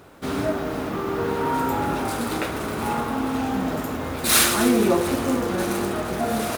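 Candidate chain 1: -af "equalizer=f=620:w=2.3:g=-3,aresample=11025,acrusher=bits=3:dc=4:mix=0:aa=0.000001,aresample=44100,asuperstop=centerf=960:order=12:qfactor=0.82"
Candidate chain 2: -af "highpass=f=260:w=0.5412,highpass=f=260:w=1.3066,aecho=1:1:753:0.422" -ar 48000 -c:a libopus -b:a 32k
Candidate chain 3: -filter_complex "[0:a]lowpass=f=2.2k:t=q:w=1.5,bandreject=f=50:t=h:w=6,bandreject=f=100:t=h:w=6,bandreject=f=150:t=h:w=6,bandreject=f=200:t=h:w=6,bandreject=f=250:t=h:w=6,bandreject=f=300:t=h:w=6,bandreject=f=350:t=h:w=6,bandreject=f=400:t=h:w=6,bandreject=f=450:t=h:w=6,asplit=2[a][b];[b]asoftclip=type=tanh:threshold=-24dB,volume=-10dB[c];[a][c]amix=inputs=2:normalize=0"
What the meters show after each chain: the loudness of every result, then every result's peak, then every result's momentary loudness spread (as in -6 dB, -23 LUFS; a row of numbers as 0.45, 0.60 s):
-29.5, -23.5, -23.0 LUFS; -6.0, -3.5, -7.5 dBFS; 10, 10, 6 LU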